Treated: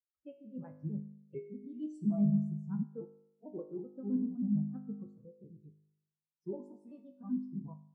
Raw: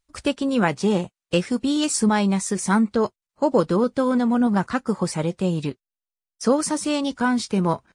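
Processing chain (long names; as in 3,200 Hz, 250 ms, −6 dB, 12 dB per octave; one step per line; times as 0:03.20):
pitch shifter gated in a rhythm −4 semitones, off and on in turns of 64 ms
tuned comb filter 51 Hz, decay 1.9 s, harmonics all, mix 90%
every bin expanded away from the loudest bin 2.5 to 1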